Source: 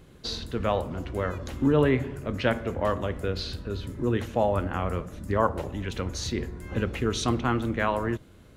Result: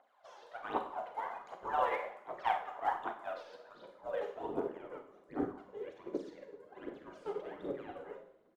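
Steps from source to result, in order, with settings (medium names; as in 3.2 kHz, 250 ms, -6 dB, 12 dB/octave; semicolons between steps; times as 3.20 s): band-stop 2.6 kHz, Q 18; de-hum 58.25 Hz, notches 15; spectral gate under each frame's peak -15 dB weak; dynamic bell 300 Hz, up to +3 dB, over -49 dBFS, Q 0.73; band-pass sweep 770 Hz -> 380 Hz, 3.73–4.78 s; phaser 1.3 Hz, delay 2.5 ms, feedback 73%; frequency-shifting echo 126 ms, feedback 54%, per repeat -50 Hz, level -20.5 dB; Schroeder reverb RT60 0.61 s, combs from 31 ms, DRR 3.5 dB; upward expansion 1.5:1, over -52 dBFS; trim +6 dB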